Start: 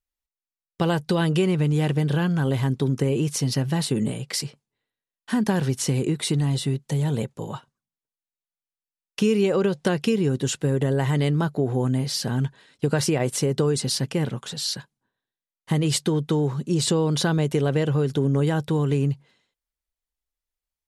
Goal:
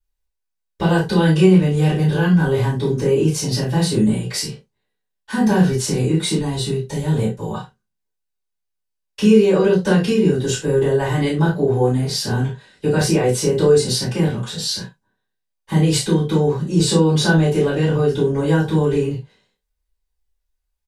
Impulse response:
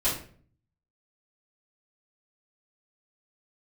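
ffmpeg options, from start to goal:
-filter_complex "[0:a]aecho=1:1:32|72:0.562|0.126[a];[1:a]atrim=start_sample=2205,afade=t=out:st=0.16:d=0.01,atrim=end_sample=7497,asetrate=66150,aresample=44100[b];[a][b]afir=irnorm=-1:irlink=0,volume=-3dB"

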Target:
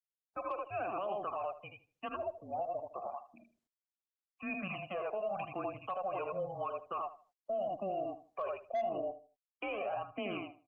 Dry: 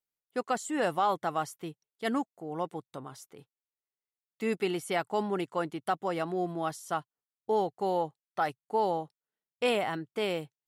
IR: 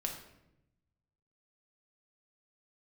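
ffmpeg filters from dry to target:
-filter_complex "[0:a]highpass=f=280:t=q:w=0.5412,highpass=f=280:t=q:w=1.307,lowpass=f=3.3k:t=q:w=0.5176,lowpass=f=3.3k:t=q:w=0.7071,lowpass=f=3.3k:t=q:w=1.932,afreqshift=-200,asplit=2[a][b];[b]aecho=0:1:42|60|80:0.188|0.141|0.596[c];[a][c]amix=inputs=2:normalize=0,flanger=delay=0.3:depth=1.9:regen=5:speed=0.88:shape=triangular,acrossover=split=200|2000[d][e][f];[d]acompressor=threshold=-36dB:ratio=4[g];[e]acompressor=threshold=-34dB:ratio=4[h];[f]acompressor=threshold=-48dB:ratio=4[i];[g][h][i]amix=inputs=3:normalize=0,asplit=3[j][k][l];[j]bandpass=f=730:t=q:w=8,volume=0dB[m];[k]bandpass=f=1.09k:t=q:w=8,volume=-6dB[n];[l]bandpass=f=2.44k:t=q:w=8,volume=-9dB[o];[m][n][o]amix=inputs=3:normalize=0,aeval=exprs='0.0168*(cos(1*acos(clip(val(0)/0.0168,-1,1)))-cos(1*PI/2))+0.000188*(cos(4*acos(clip(val(0)/0.0168,-1,1)))-cos(4*PI/2))':c=same,asplit=3[p][q][r];[p]afade=t=out:st=2.08:d=0.02[s];[q]acompressor=threshold=-50dB:ratio=8,afade=t=in:st=2.08:d=0.02,afade=t=out:st=2.73:d=0.02[t];[r]afade=t=in:st=2.73:d=0.02[u];[s][t][u]amix=inputs=3:normalize=0,afftfilt=real='re*gte(hypot(re,im),0.000562)':imag='im*gte(hypot(re,im),0.000562)':win_size=1024:overlap=0.75,alimiter=level_in=22dB:limit=-24dB:level=0:latency=1:release=93,volume=-22dB,asplit=2[v][w];[w]adelay=77,lowpass=f=2.2k:p=1,volume=-13.5dB,asplit=2[x][y];[y]adelay=77,lowpass=f=2.2k:p=1,volume=0.28,asplit=2[z][aa];[aa]adelay=77,lowpass=f=2.2k:p=1,volume=0.28[ab];[x][z][ab]amix=inputs=3:normalize=0[ac];[v][ac]amix=inputs=2:normalize=0,volume=16.5dB" -ar 48000 -c:a libopus -b:a 32k

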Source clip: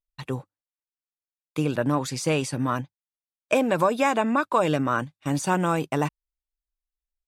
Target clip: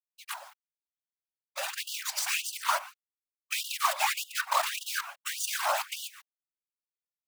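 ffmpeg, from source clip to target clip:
-filter_complex "[0:a]highpass=260,agate=range=-8dB:threshold=-39dB:ratio=16:detection=peak,aecho=1:1:6.1:1,asplit=2[a][b];[b]acompressor=threshold=-28dB:ratio=6,volume=1.5dB[c];[a][c]amix=inputs=2:normalize=0,alimiter=limit=-9.5dB:level=0:latency=1:release=64,areverse,acompressor=mode=upward:threshold=-39dB:ratio=2.5,areverse,aecho=1:1:119:0.251,acrusher=bits=4:dc=4:mix=0:aa=0.000001,afftfilt=real='hypot(re,im)*cos(2*PI*random(0))':imag='hypot(re,im)*sin(2*PI*random(1))':win_size=512:overlap=0.75,afftfilt=real='re*gte(b*sr/1024,530*pow(2800/530,0.5+0.5*sin(2*PI*1.7*pts/sr)))':imag='im*gte(b*sr/1024,530*pow(2800/530,0.5+0.5*sin(2*PI*1.7*pts/sr)))':win_size=1024:overlap=0.75"

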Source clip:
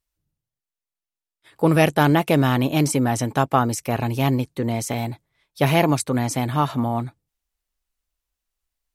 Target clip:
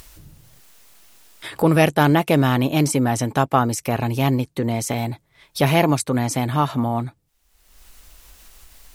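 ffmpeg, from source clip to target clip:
-af "acompressor=mode=upward:threshold=-20dB:ratio=2.5,volume=1dB"

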